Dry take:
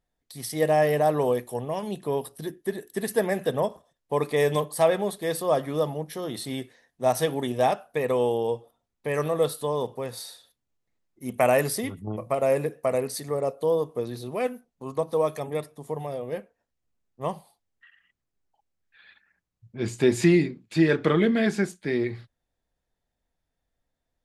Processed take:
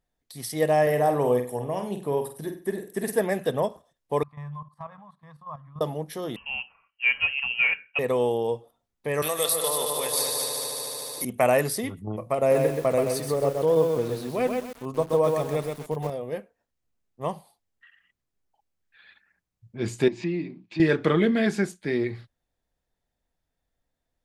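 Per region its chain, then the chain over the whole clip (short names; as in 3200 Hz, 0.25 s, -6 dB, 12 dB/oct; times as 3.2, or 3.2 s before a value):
0.82–3.21 bell 4000 Hz -6.5 dB 0.84 oct + flutter echo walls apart 8.3 m, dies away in 0.37 s
4.23–5.81 double band-pass 390 Hz, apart 2.9 oct + level quantiser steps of 12 dB
6.36–7.99 notch comb 890 Hz + inverted band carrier 3000 Hz
9.22–11.25 tilt +4.5 dB/oct + multi-head echo 74 ms, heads second and third, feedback 60%, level -6.5 dB + three-band squash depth 70%
12.38–16.1 low shelf 410 Hz +3.5 dB + lo-fi delay 0.129 s, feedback 35%, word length 7-bit, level -3.5 dB
20.08–20.8 half-wave gain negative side -3 dB + compressor 2:1, threshold -42 dBFS + speaker cabinet 130–5400 Hz, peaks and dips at 180 Hz +8 dB, 320 Hz +9 dB, 460 Hz -5 dB, 980 Hz +5 dB, 1400 Hz -6 dB, 2500 Hz +6 dB
whole clip: dry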